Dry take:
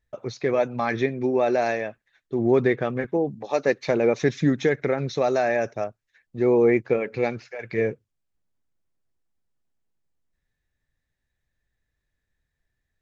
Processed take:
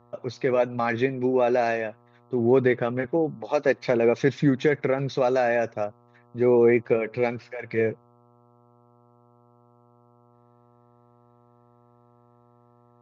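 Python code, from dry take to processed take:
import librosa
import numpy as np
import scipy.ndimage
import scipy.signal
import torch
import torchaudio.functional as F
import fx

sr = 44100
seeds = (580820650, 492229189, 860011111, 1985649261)

y = scipy.signal.sosfilt(scipy.signal.butter(2, 5100.0, 'lowpass', fs=sr, output='sos'), x)
y = fx.dmg_buzz(y, sr, base_hz=120.0, harmonics=11, level_db=-58.0, tilt_db=-3, odd_only=False)
y = scipy.signal.sosfilt(scipy.signal.butter(2, 62.0, 'highpass', fs=sr, output='sos'), y)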